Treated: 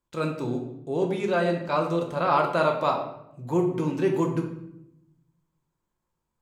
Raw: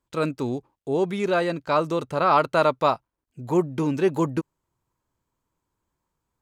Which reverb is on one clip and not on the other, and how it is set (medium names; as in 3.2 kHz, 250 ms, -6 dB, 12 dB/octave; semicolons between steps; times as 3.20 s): simulated room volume 230 m³, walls mixed, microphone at 0.87 m; trim -5 dB